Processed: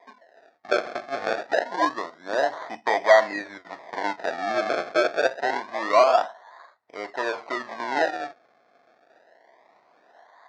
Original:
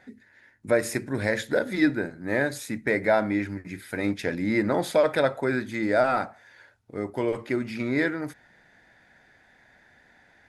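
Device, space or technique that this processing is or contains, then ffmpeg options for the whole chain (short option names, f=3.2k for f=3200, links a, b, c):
circuit-bent sampling toy: -filter_complex "[0:a]acrusher=samples=31:mix=1:aa=0.000001:lfo=1:lforange=31:lforate=0.26,highpass=530,equalizer=f=680:t=q:w=4:g=10,equalizer=f=1k:t=q:w=4:g=8,equalizer=f=1.9k:t=q:w=4:g=9,equalizer=f=2.9k:t=q:w=4:g=-9,lowpass=f=5.1k:w=0.5412,lowpass=f=5.1k:w=1.3066,asettb=1/sr,asplit=3[a][b][c];[a]atrim=end=1.674[d];[b]atrim=start=1.67:end=2.58,asetpts=PTS-STARTPTS,afade=t=in:d=0.004:c=qsin,afade=t=out:st=0.906:d=0.004:c=qsin,equalizer=f=2.3k:t=o:w=0.45:g=-9.5[e];[c]atrim=start=2.576[f];[d][e]acrossfade=d=0.004:c1=hsin:c2=qsin[g];[g][f]acrossfade=d=0.004:c1=qsin:c2=hsin"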